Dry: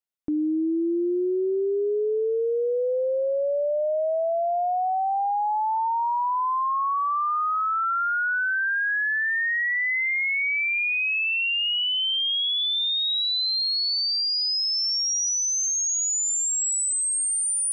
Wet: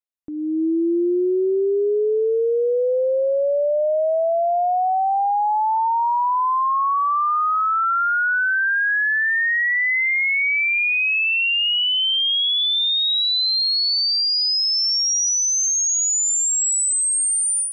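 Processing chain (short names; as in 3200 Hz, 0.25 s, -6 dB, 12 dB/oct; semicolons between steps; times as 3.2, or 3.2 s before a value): AGC gain up to 13 dB; gain -8 dB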